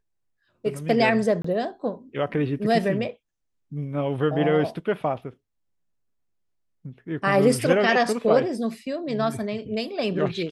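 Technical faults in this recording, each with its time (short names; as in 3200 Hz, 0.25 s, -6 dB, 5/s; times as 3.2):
1.42–1.44 gap 24 ms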